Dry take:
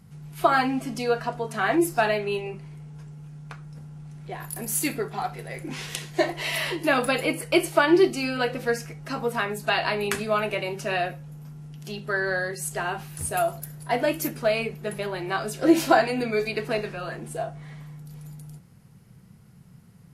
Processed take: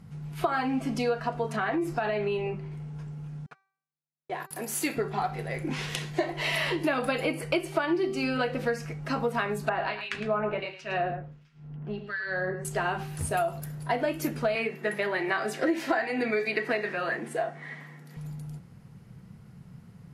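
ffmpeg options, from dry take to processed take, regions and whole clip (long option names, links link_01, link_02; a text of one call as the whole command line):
ffmpeg -i in.wav -filter_complex "[0:a]asettb=1/sr,asplit=3[link_01][link_02][link_03];[link_01]atrim=end=1.564[link_04];[link_02]atrim=start=1.56:end=2.72,asetpts=PTS-STARTPTS,afade=type=in:duration=0.004:curve=qsin,afade=type=out:start_time=1.156:duration=0.004:curve=qsin,lowpass=frequency=4000:poles=1,acompressor=threshold=-26dB:ratio=4:attack=3.2:release=140:knee=1:detection=peak[link_05];[link_03]atrim=start=2.716[link_06];[link_04][link_05]acrossfade=duration=0.004:curve1=hsin:curve2=qsin[link_07];[link_07][link_06]acrossfade=duration=0.004:curve1=qsin:curve2=hsin,asettb=1/sr,asplit=3[link_08][link_09][link_10];[link_08]atrim=end=3.464[link_11];[link_09]atrim=start=3.46:end=4.97,asetpts=PTS-STARTPTS,afade=type=in:duration=0.004:curve=qsin,afade=type=out:start_time=1.506:duration=0.004:curve=qsin,highpass=300,agate=range=-51dB:threshold=-41dB:ratio=16:release=100:detection=peak[link_12];[link_10]atrim=start=4.966[link_13];[link_11][link_12]acrossfade=duration=0.004:curve1=hsin:curve2=qsin[link_14];[link_14][link_13]acrossfade=duration=0.004:curve1=qsin:curve2=hsin,asettb=1/sr,asplit=3[link_15][link_16][link_17];[link_15]atrim=end=9.694[link_18];[link_16]atrim=start=9.69:end=12.65,asetpts=PTS-STARTPTS,afade=type=in:duration=0.004:curve=qsin,afade=type=out:start_time=2.956:duration=0.004:curve=qsin,acrossover=split=1800[link_19][link_20];[link_19]aeval=exprs='val(0)*(1-1/2+1/2*cos(2*PI*1.4*n/s))':channel_layout=same[link_21];[link_20]aeval=exprs='val(0)*(1-1/2-1/2*cos(2*PI*1.4*n/s))':channel_layout=same[link_22];[link_21][link_22]amix=inputs=2:normalize=0,lowpass=3700,aecho=1:1:109:0.299,atrim=end_sample=130536[link_23];[link_17]atrim=start=12.646[link_24];[link_18][link_23]acrossfade=duration=0.004:curve1=hsin:curve2=qsin[link_25];[link_25][link_24]acrossfade=duration=0.004:curve1=qsin:curve2=hsin,asettb=1/sr,asplit=3[link_26][link_27][link_28];[link_26]atrim=end=14.554[link_29];[link_27]atrim=start=14.55:end=18.17,asetpts=PTS-STARTPTS,afade=type=in:duration=0.004:curve=qsin,afade=type=out:start_time=3.616:duration=0.004:curve=qsin,highpass=frequency=200:width=0.5412,highpass=frequency=200:width=1.3066,equalizer=frequency=1900:width_type=o:width=0.38:gain=12[link_30];[link_28]atrim=start=18.166[link_31];[link_29][link_30]acrossfade=duration=0.004:curve1=hsin:curve2=qsin[link_32];[link_32][link_31]acrossfade=duration=0.004:curve1=qsin:curve2=hsin,lowpass=frequency=3400:poles=1,bandreject=frequency=387.5:width_type=h:width=4,bandreject=frequency=775:width_type=h:width=4,bandreject=frequency=1162.5:width_type=h:width=4,bandreject=frequency=1550:width_type=h:width=4,bandreject=frequency=1937.5:width_type=h:width=4,bandreject=frequency=2325:width_type=h:width=4,bandreject=frequency=2712.5:width_type=h:width=4,bandreject=frequency=3100:width_type=h:width=4,bandreject=frequency=3487.5:width_type=h:width=4,bandreject=frequency=3875:width_type=h:width=4,bandreject=frequency=4262.5:width_type=h:width=4,bandreject=frequency=4650:width_type=h:width=4,bandreject=frequency=5037.5:width_type=h:width=4,bandreject=frequency=5425:width_type=h:width=4,bandreject=frequency=5812.5:width_type=h:width=4,bandreject=frequency=6200:width_type=h:width=4,bandreject=frequency=6587.5:width_type=h:width=4,bandreject=frequency=6975:width_type=h:width=4,bandreject=frequency=7362.5:width_type=h:width=4,bandreject=frequency=7750:width_type=h:width=4,bandreject=frequency=8137.5:width_type=h:width=4,acompressor=threshold=-27dB:ratio=6,volume=3dB" out.wav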